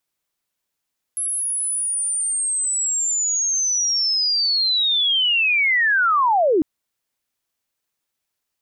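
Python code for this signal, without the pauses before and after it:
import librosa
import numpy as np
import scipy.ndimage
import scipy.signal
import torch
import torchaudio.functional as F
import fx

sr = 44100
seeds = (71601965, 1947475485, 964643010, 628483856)

y = fx.chirp(sr, length_s=5.45, from_hz=11000.0, to_hz=280.0, law='linear', from_db=-21.0, to_db=-13.5)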